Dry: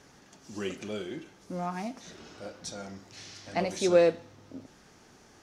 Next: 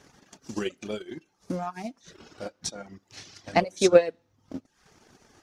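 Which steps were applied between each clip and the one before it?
transient designer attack +10 dB, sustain −7 dB
reverb reduction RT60 0.65 s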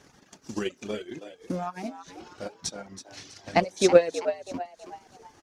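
echo with shifted repeats 325 ms, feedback 40%, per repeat +92 Hz, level −11.5 dB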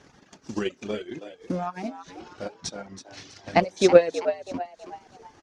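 high-frequency loss of the air 66 metres
level +2.5 dB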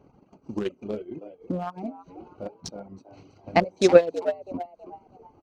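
adaptive Wiener filter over 25 samples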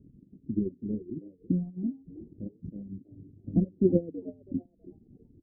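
inverse Chebyshev low-pass filter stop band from 1,000 Hz, stop band 60 dB
level +4.5 dB

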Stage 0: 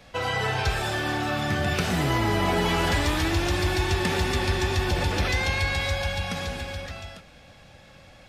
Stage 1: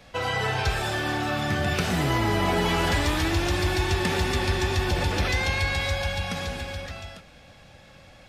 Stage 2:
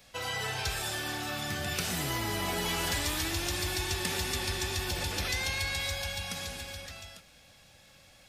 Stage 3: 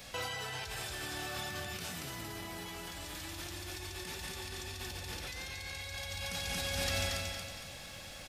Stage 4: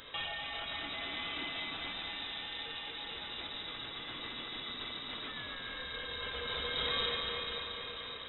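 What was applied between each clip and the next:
no processing that can be heard
first-order pre-emphasis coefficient 0.8; level +3 dB
repeating echo 230 ms, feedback 42%, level −4 dB; compressor whose output falls as the input rises −41 dBFS, ratio −1
feedback delay with all-pass diffusion 454 ms, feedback 57%, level −6 dB; voice inversion scrambler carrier 3,800 Hz

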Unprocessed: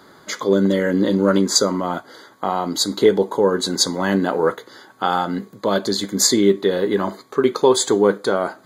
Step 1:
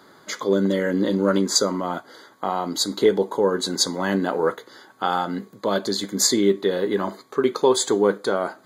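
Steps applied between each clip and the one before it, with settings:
low-shelf EQ 67 Hz −11 dB
level −3 dB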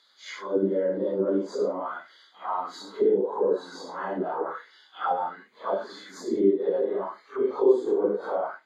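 random phases in long frames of 200 ms
envelope filter 350–4,000 Hz, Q 2.4, down, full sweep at −15.5 dBFS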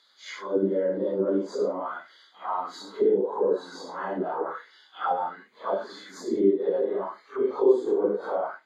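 no processing that can be heard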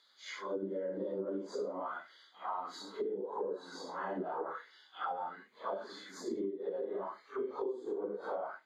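downward compressor 16 to 1, threshold −28 dBFS, peak gain reduction 16 dB
level −5.5 dB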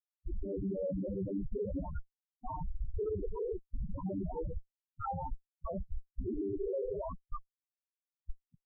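high-pass filter sweep 180 Hz → 2,000 Hz, 0:06.35–0:07.61
comparator with hysteresis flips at −38 dBFS
spectral peaks only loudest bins 4
level +7 dB

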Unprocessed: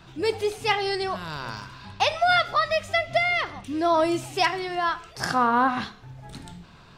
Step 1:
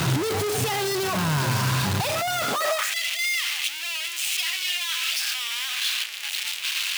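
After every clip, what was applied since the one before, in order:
sign of each sample alone
high-pass filter sweep 120 Hz → 2,700 Hz, 0:02.40–0:02.95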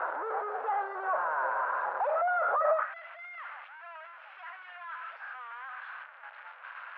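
elliptic band-pass filter 530–1,500 Hz, stop band 70 dB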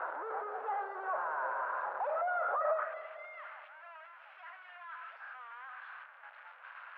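on a send at −13 dB: spectral tilt −3.5 dB per octave + convolution reverb RT60 2.3 s, pre-delay 95 ms
on the sum: level −5.5 dB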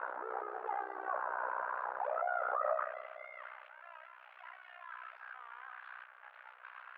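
amplitude modulation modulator 62 Hz, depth 85%
level +2 dB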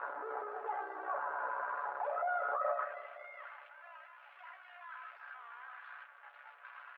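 comb filter 7 ms, depth 68%
level −2 dB

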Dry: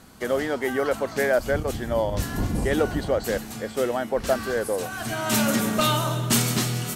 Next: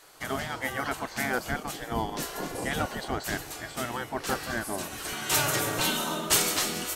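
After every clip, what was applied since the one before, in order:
gate on every frequency bin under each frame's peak −10 dB weak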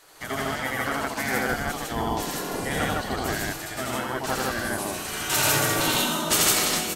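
loudspeakers that aren't time-aligned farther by 29 metres −1 dB, 53 metres 0 dB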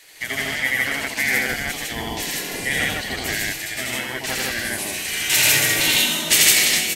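high shelf with overshoot 1,600 Hz +7.5 dB, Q 3
level −1.5 dB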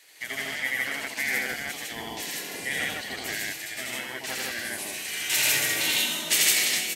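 high-pass filter 220 Hz 6 dB per octave
level −7 dB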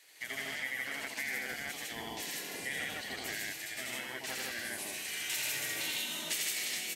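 downward compressor 3 to 1, threshold −29 dBFS, peak gain reduction 9.5 dB
level −5.5 dB

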